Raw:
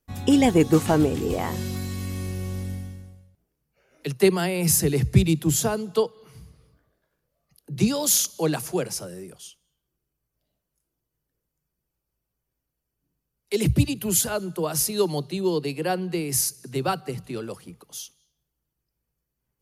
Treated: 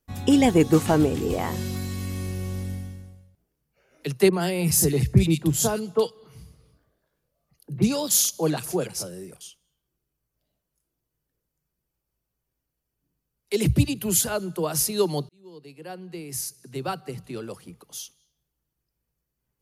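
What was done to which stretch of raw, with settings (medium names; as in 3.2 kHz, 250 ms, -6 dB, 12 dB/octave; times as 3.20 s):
4.29–9.41 s: bands offset in time lows, highs 40 ms, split 1.8 kHz
15.29–18.00 s: fade in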